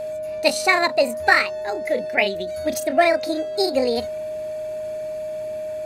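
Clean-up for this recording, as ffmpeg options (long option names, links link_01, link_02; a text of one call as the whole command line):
ffmpeg -i in.wav -af "bandreject=frequency=112.8:width_type=h:width=4,bandreject=frequency=225.6:width_type=h:width=4,bandreject=frequency=338.4:width_type=h:width=4,bandreject=frequency=451.2:width_type=h:width=4,bandreject=frequency=620:width=30" out.wav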